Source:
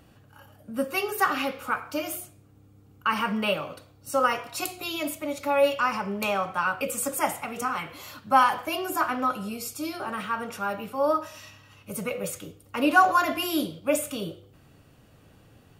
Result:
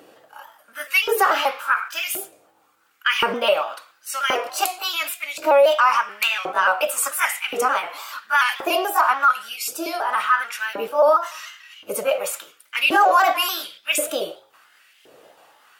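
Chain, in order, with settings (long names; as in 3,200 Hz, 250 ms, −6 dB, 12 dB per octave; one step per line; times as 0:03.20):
pitch shifter gated in a rhythm +1.5 semitones, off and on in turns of 145 ms
auto-filter high-pass saw up 0.93 Hz 380–2,700 Hz
brickwall limiter −15 dBFS, peak gain reduction 9.5 dB
level +7.5 dB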